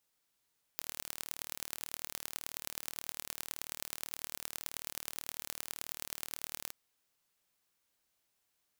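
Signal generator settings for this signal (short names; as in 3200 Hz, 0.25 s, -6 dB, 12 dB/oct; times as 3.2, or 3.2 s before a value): pulse train 38.2/s, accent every 4, -9.5 dBFS 5.94 s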